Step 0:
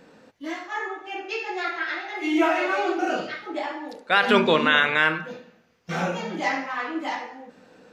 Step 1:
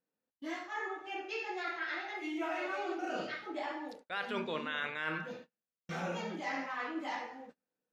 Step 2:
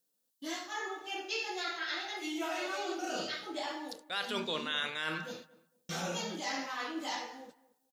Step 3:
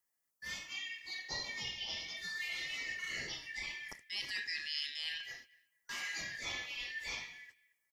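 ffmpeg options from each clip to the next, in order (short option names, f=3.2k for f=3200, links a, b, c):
-af "agate=range=-33dB:threshold=-43dB:ratio=16:detection=peak,areverse,acompressor=threshold=-27dB:ratio=6,areverse,volume=-7dB"
-filter_complex "[0:a]aexciter=amount=2.9:drive=8.2:freq=3.2k,asplit=2[a][b];[b]adelay=227,lowpass=f=1.5k:p=1,volume=-19dB,asplit=2[c][d];[d]adelay=227,lowpass=f=1.5k:p=1,volume=0.26[e];[a][c][e]amix=inputs=3:normalize=0"
-af "afftfilt=real='real(if(lt(b,272),68*(eq(floor(b/68),0)*3+eq(floor(b/68),1)*0+eq(floor(b/68),2)*1+eq(floor(b/68),3)*2)+mod(b,68),b),0)':imag='imag(if(lt(b,272),68*(eq(floor(b/68),0)*3+eq(floor(b/68),1)*0+eq(floor(b/68),2)*1+eq(floor(b/68),3)*2)+mod(b,68),b),0)':win_size=2048:overlap=0.75,volume=-4.5dB"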